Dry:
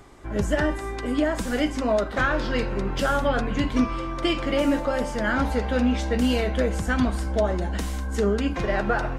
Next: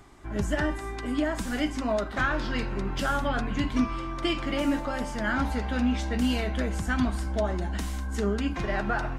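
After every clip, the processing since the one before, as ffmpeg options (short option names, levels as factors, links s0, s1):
-af "equalizer=f=500:t=o:w=0.37:g=-9.5,volume=0.708"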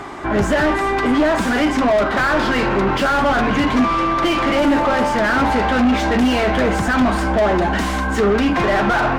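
-filter_complex "[0:a]asplit=2[s0][s1];[s1]highpass=f=720:p=1,volume=31.6,asoftclip=type=tanh:threshold=0.224[s2];[s0][s2]amix=inputs=2:normalize=0,lowpass=f=1100:p=1,volume=0.501,volume=2"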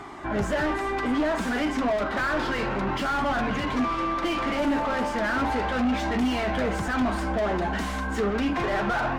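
-af "flanger=delay=0.9:depth=3.7:regen=-69:speed=0.32:shape=sinusoidal,volume=0.562"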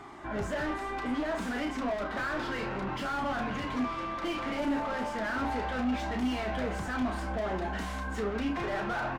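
-filter_complex "[0:a]asplit=2[s0][s1];[s1]adelay=32,volume=0.398[s2];[s0][s2]amix=inputs=2:normalize=0,volume=0.422"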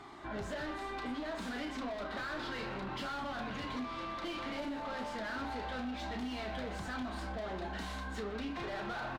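-filter_complex "[0:a]acompressor=threshold=0.0251:ratio=6,equalizer=f=4000:t=o:w=0.62:g=8,asplit=2[s0][s1];[s1]adelay=120,highpass=300,lowpass=3400,asoftclip=type=hard:threshold=0.0158,volume=0.316[s2];[s0][s2]amix=inputs=2:normalize=0,volume=0.596"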